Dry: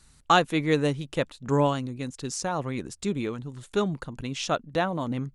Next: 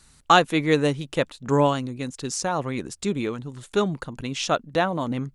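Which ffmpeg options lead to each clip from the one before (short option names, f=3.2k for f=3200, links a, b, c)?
-af "lowshelf=f=160:g=-4.5,volume=4dB"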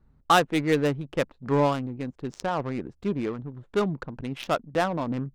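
-filter_complex "[0:a]asplit=2[a][b];[b]asoftclip=type=tanh:threshold=-17.5dB,volume=-5.5dB[c];[a][c]amix=inputs=2:normalize=0,adynamicsmooth=sensitivity=1.5:basefreq=690,volume=-5dB"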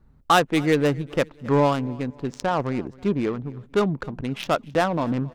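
-filter_complex "[0:a]asplit=2[a][b];[b]alimiter=limit=-18.5dB:level=0:latency=1:release=149,volume=-3dB[c];[a][c]amix=inputs=2:normalize=0,aecho=1:1:267|534|801:0.0708|0.0269|0.0102"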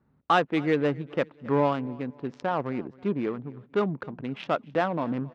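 -af "highpass=140,lowpass=3k,volume=-4dB"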